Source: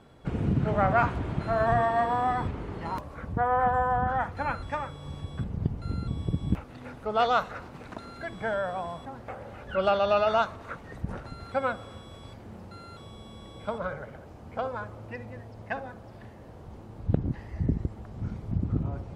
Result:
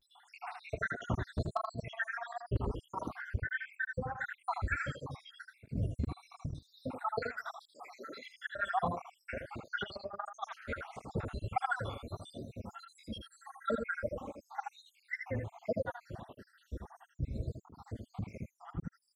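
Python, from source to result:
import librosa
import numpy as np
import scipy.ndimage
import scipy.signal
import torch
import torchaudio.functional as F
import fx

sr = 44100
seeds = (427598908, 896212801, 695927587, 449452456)

y = fx.spec_dropout(x, sr, seeds[0], share_pct=84)
y = fx.highpass(y, sr, hz=fx.line((7.57, 740.0), (8.28, 220.0)), slope=24, at=(7.57, 8.28), fade=0.02)
y = fx.comb(y, sr, ms=3.6, depth=0.91, at=(13.05, 14.81))
y = fx.over_compress(y, sr, threshold_db=-35.0, ratio=-0.5)
y = 10.0 ** (-22.5 / 20.0) * (np.abs((y / 10.0 ** (-22.5 / 20.0) + 3.0) % 4.0 - 2.0) - 1.0)
y = y + 10.0 ** (-6.0 / 20.0) * np.pad(y, (int(80 * sr / 1000.0), 0))[:len(y)]
y = fx.vibrato(y, sr, rate_hz=0.35, depth_cents=61.0)
y = fx.flanger_cancel(y, sr, hz=1.5, depth_ms=6.8)
y = y * 10.0 ** (4.0 / 20.0)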